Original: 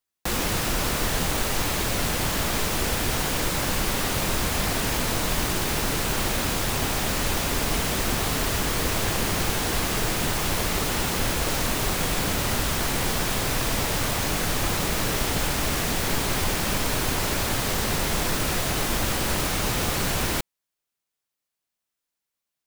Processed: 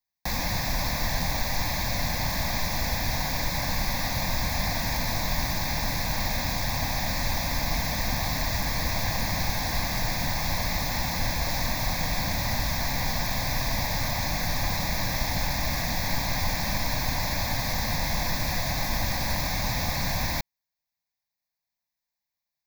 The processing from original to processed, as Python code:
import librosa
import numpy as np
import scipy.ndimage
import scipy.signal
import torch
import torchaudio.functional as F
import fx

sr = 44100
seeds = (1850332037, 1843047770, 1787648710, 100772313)

y = fx.fixed_phaser(x, sr, hz=2000.0, stages=8)